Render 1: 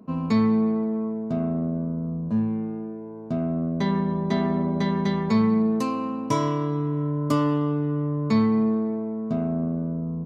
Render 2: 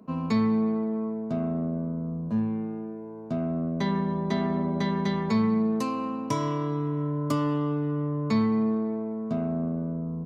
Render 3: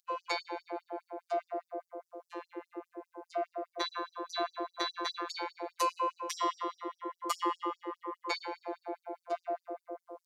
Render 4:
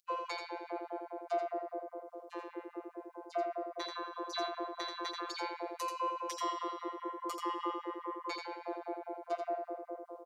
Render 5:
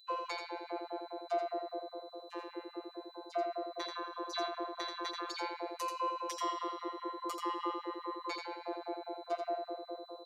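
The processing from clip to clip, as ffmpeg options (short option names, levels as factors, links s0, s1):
-filter_complex "[0:a]lowshelf=f=460:g=-3.5,acrossover=split=270[s0][s1];[s1]acompressor=threshold=0.0398:ratio=2.5[s2];[s0][s2]amix=inputs=2:normalize=0"
-af "afftfilt=real='hypot(re,im)*cos(PI*b)':imag='0':win_size=1024:overlap=0.75,afftfilt=real='re*gte(b*sr/1024,310*pow(4900/310,0.5+0.5*sin(2*PI*4.9*pts/sr)))':imag='im*gte(b*sr/1024,310*pow(4900/310,0.5+0.5*sin(2*PI*4.9*pts/sr)))':win_size=1024:overlap=0.75,volume=2"
-filter_complex "[0:a]alimiter=limit=0.0891:level=0:latency=1:release=387,asplit=2[s0][s1];[s1]aecho=0:1:85:0.562[s2];[s0][s2]amix=inputs=2:normalize=0,volume=0.891"
-af "aeval=exprs='val(0)+0.00126*sin(2*PI*4000*n/s)':c=same"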